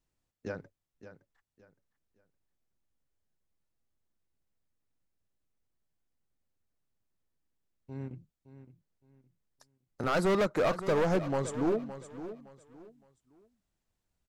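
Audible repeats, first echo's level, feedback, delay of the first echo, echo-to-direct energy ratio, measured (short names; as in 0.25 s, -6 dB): 2, -13.0 dB, 28%, 0.565 s, -12.5 dB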